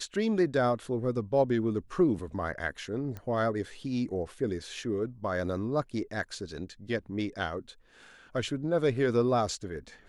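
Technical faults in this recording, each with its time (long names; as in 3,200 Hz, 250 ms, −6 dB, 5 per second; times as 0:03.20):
0:03.17: click −26 dBFS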